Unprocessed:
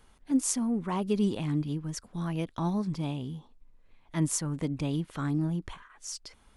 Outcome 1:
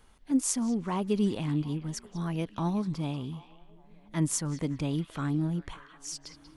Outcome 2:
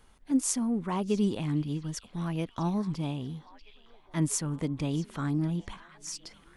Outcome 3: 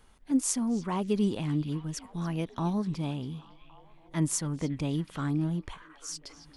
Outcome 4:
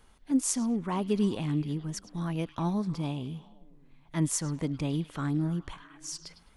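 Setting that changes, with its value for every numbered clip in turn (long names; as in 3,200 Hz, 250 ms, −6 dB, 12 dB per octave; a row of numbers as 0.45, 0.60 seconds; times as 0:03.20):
echo through a band-pass that steps, delay time: 187, 640, 279, 104 milliseconds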